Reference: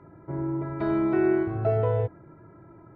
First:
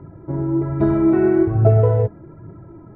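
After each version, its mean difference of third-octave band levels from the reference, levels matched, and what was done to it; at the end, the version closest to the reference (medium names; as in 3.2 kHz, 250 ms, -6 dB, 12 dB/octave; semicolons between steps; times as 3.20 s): 2.5 dB: treble shelf 2.4 kHz -11.5 dB; phaser 1.2 Hz, delay 4.9 ms, feedback 37%; bass shelf 350 Hz +8.5 dB; trim +4 dB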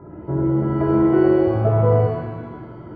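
4.0 dB: low-pass 1 kHz 12 dB/octave; in parallel at +0.5 dB: compression, threshold -32 dBFS, peak gain reduction 12.5 dB; on the sum: pitch-shifted reverb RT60 1.2 s, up +7 st, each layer -8 dB, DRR 1 dB; trim +4 dB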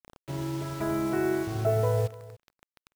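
9.5 dB: peaking EQ 350 Hz -6 dB 0.27 oct; bit crusher 7-bit; delay 291 ms -19 dB; trim -1 dB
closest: first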